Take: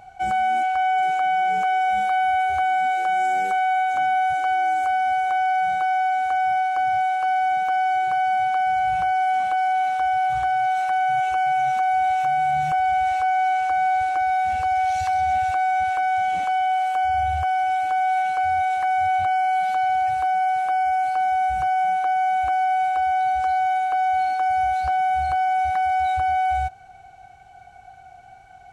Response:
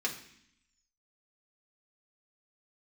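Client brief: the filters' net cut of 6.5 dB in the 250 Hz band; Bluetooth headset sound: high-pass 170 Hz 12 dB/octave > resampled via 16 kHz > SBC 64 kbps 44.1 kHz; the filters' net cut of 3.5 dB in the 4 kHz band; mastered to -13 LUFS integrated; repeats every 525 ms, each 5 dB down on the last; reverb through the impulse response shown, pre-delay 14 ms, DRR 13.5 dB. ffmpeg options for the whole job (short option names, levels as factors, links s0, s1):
-filter_complex "[0:a]equalizer=f=250:t=o:g=-8,equalizer=f=4000:t=o:g=-5.5,aecho=1:1:525|1050|1575|2100|2625|3150|3675:0.562|0.315|0.176|0.0988|0.0553|0.031|0.0173,asplit=2[s0][s1];[1:a]atrim=start_sample=2205,adelay=14[s2];[s1][s2]afir=irnorm=-1:irlink=0,volume=0.119[s3];[s0][s3]amix=inputs=2:normalize=0,highpass=170,aresample=16000,aresample=44100,volume=3.98" -ar 44100 -c:a sbc -b:a 64k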